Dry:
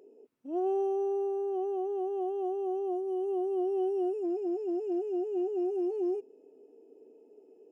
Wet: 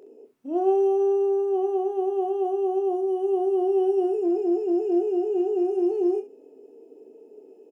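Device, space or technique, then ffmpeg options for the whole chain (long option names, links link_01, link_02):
slapback doubling: -filter_complex "[0:a]asplit=3[link_01][link_02][link_03];[link_02]adelay=26,volume=-8dB[link_04];[link_03]adelay=66,volume=-12dB[link_05];[link_01][link_04][link_05]amix=inputs=3:normalize=0,volume=7dB"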